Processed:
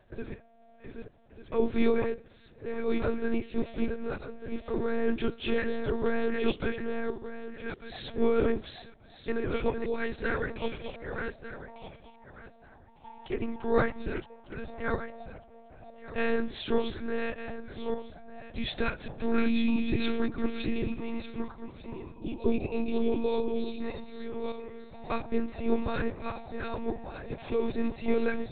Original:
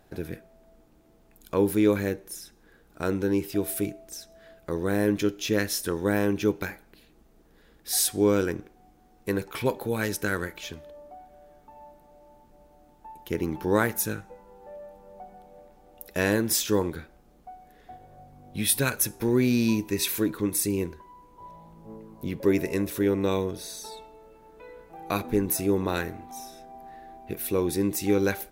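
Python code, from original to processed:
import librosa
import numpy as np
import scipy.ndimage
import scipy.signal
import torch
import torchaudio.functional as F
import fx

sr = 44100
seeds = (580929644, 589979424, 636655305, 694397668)

y = fx.reverse_delay_fb(x, sr, ms=598, feedback_pct=42, wet_db=-4)
y = fx.spec_box(y, sr, start_s=22.15, length_s=1.66, low_hz=1100.0, high_hz=2300.0, gain_db=-22)
y = fx.lpc_monotone(y, sr, seeds[0], pitch_hz=230.0, order=10)
y = F.gain(torch.from_numpy(y), -3.0).numpy()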